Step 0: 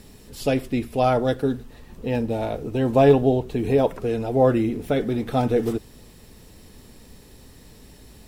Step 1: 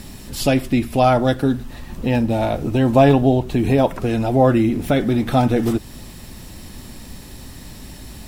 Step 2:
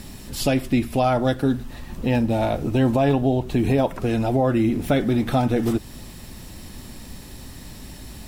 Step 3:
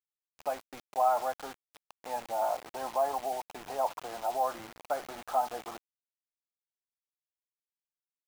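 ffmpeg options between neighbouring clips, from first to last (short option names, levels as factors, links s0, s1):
-filter_complex "[0:a]equalizer=f=450:w=5.1:g=-12.5,asplit=2[s0][s1];[s1]acompressor=threshold=0.0316:ratio=6,volume=1.33[s2];[s0][s2]amix=inputs=2:normalize=0,volume=1.5"
-af "alimiter=limit=0.398:level=0:latency=1:release=240,volume=0.794"
-af "asuperpass=centerf=930:order=4:qfactor=1.7,acrusher=bits=6:mix=0:aa=0.000001,volume=0.794"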